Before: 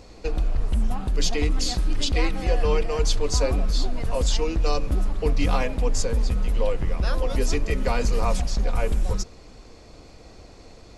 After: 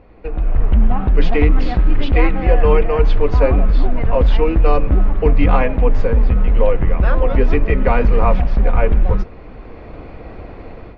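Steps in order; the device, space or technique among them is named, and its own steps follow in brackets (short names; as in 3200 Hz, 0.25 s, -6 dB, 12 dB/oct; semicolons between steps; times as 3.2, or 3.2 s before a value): action camera in a waterproof case (LPF 2400 Hz 24 dB/oct; AGC gain up to 13.5 dB; AAC 64 kbps 48000 Hz)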